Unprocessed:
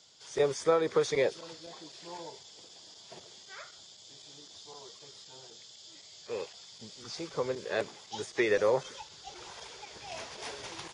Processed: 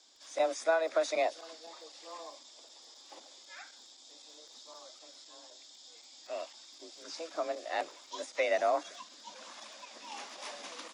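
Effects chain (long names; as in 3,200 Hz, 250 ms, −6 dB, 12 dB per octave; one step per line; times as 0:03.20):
frequency shifter +160 Hz
surface crackle 20 per second −50 dBFS
level −2.5 dB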